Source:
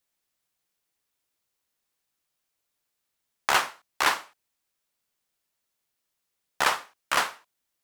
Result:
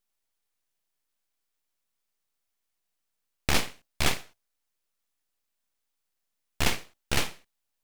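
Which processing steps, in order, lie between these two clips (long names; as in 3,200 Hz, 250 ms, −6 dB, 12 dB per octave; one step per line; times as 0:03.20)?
mains-hum notches 60/120/180/240/300/360/420 Hz
full-wave rectification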